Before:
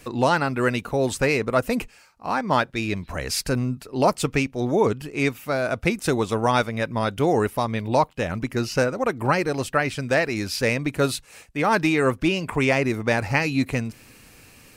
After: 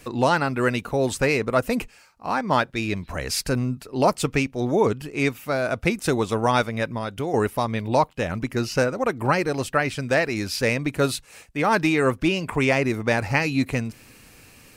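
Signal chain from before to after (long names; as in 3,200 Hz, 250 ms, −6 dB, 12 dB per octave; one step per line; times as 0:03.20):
0:06.88–0:07.34: downward compressor 2.5 to 1, threshold −27 dBFS, peak gain reduction 8 dB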